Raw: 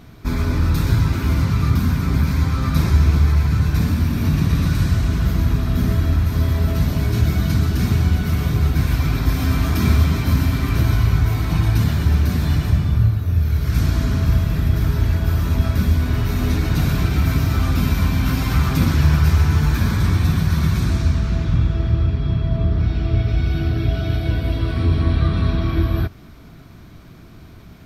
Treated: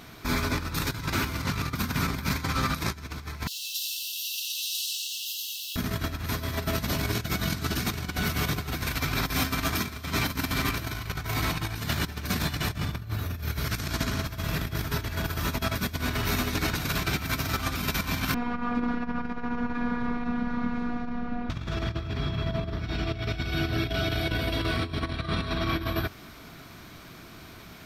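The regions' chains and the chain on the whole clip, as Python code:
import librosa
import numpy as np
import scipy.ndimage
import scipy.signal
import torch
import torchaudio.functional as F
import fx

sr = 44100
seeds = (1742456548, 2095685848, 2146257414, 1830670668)

y = fx.chain(x, sr, fx.quant_dither(seeds[0], bits=8, dither='none'),
    fx.brickwall_highpass(low_hz=2600.0),
    fx.echo_single(ms=90, db=-5.5), at=(3.47, 5.76))
y = fx.chain(y, sr, fx.robotise(hz=241.0),
    fx.lowpass(hz=1100.0, slope=12), at=(18.34, 21.5))
y = fx.tilt_shelf(y, sr, db=-3.0, hz=970.0)
y = fx.over_compress(y, sr, threshold_db=-22.0, ratio=-0.5)
y = fx.low_shelf(y, sr, hz=200.0, db=-10.5)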